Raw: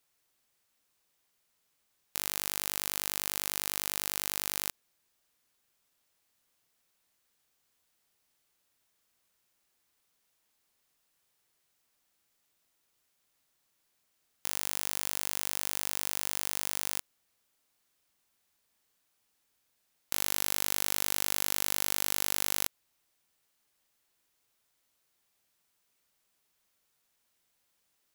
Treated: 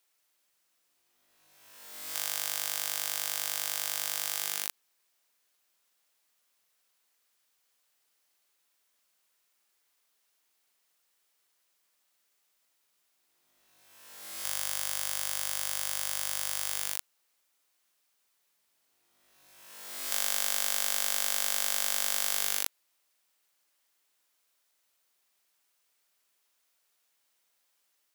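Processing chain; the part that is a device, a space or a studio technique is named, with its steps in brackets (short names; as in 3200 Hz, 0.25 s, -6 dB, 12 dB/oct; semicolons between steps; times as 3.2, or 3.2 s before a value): ghost voice (reverse; reverb RT60 1.8 s, pre-delay 31 ms, DRR 2 dB; reverse; HPF 610 Hz 6 dB/oct)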